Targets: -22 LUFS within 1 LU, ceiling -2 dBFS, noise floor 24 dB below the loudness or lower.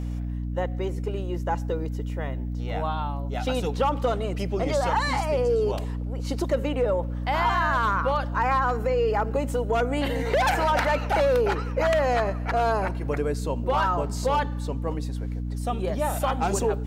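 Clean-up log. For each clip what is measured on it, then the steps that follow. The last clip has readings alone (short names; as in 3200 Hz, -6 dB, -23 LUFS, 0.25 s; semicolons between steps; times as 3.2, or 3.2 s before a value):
hum 60 Hz; harmonics up to 300 Hz; hum level -27 dBFS; loudness -25.5 LUFS; peak -11.5 dBFS; loudness target -22.0 LUFS
-> notches 60/120/180/240/300 Hz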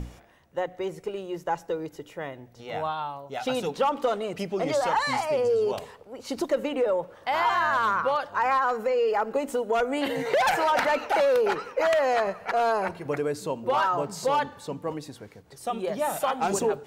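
hum none; loudness -26.5 LUFS; peak -13.5 dBFS; loudness target -22.0 LUFS
-> gain +4.5 dB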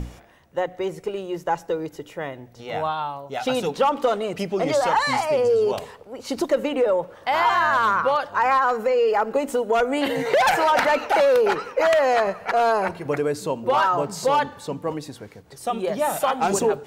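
loudness -22.0 LUFS; peak -9.0 dBFS; noise floor -48 dBFS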